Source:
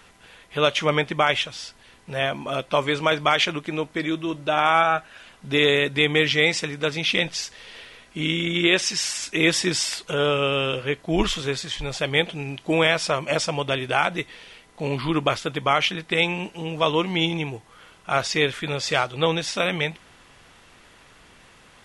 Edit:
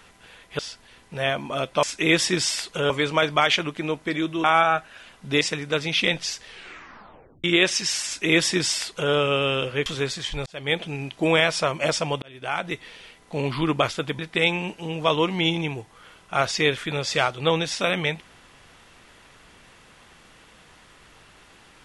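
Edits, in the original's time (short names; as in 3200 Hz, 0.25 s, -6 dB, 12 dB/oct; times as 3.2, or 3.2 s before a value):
0.59–1.55 cut
4.33–4.64 cut
5.61–6.52 cut
7.58 tape stop 0.97 s
9.17–10.24 copy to 2.79
10.97–11.33 cut
11.93–12.3 fade in
13.69–14.33 fade in
15.66–15.95 cut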